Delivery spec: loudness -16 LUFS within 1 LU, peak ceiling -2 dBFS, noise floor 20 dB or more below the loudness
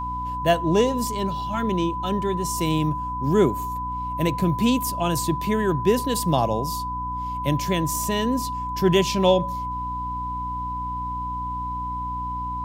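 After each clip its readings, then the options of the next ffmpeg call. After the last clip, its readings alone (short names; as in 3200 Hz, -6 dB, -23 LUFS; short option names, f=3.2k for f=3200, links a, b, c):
hum 60 Hz; harmonics up to 300 Hz; hum level -32 dBFS; steady tone 1000 Hz; tone level -27 dBFS; loudness -24.0 LUFS; peak -5.5 dBFS; loudness target -16.0 LUFS
-> -af "bandreject=f=60:t=h:w=6,bandreject=f=120:t=h:w=6,bandreject=f=180:t=h:w=6,bandreject=f=240:t=h:w=6,bandreject=f=300:t=h:w=6"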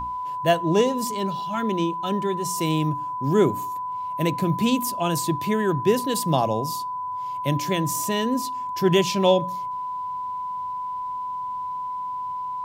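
hum none; steady tone 1000 Hz; tone level -27 dBFS
-> -af "bandreject=f=1k:w=30"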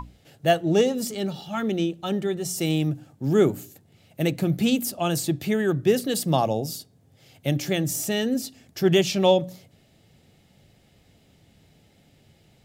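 steady tone none; loudness -24.0 LUFS; peak -6.5 dBFS; loudness target -16.0 LUFS
-> -af "volume=8dB,alimiter=limit=-2dB:level=0:latency=1"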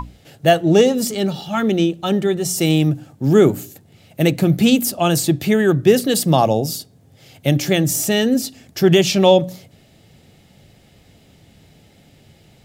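loudness -16.5 LUFS; peak -2.0 dBFS; noise floor -52 dBFS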